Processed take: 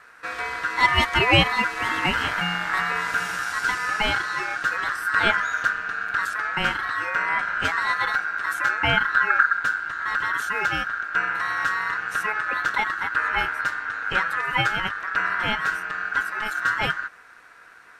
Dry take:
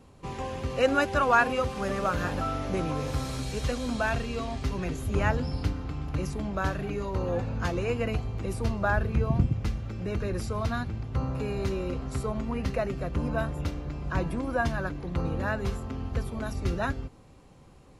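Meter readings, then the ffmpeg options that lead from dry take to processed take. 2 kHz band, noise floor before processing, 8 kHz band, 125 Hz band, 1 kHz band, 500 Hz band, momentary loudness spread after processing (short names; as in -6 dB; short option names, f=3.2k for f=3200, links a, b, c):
+14.5 dB, -53 dBFS, +5.0 dB, -6.5 dB, +8.5 dB, -4.5 dB, 7 LU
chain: -af "aeval=exprs='val(0)*sin(2*PI*1500*n/s)':c=same,volume=7.5dB"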